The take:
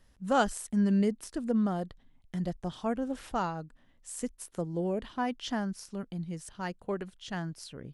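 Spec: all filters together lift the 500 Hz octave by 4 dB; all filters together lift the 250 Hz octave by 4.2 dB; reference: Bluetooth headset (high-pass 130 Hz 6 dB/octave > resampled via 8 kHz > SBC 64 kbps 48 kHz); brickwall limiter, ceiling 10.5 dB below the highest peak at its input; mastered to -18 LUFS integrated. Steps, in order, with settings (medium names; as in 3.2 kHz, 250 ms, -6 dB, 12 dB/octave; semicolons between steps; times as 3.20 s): peaking EQ 250 Hz +6.5 dB; peaking EQ 500 Hz +3.5 dB; peak limiter -21.5 dBFS; high-pass 130 Hz 6 dB/octave; resampled via 8 kHz; trim +15 dB; SBC 64 kbps 48 kHz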